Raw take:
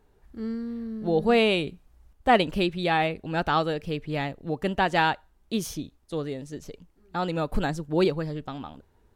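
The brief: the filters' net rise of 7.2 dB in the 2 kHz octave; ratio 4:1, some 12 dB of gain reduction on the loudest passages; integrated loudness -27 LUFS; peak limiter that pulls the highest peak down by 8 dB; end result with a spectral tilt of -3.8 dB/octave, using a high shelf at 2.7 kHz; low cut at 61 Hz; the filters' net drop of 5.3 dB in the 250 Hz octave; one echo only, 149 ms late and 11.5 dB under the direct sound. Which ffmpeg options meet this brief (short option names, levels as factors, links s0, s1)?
-af "highpass=61,equalizer=f=250:t=o:g=-8,equalizer=f=2000:t=o:g=6,highshelf=f=2700:g=7.5,acompressor=threshold=0.0447:ratio=4,alimiter=limit=0.0944:level=0:latency=1,aecho=1:1:149:0.266,volume=2.11"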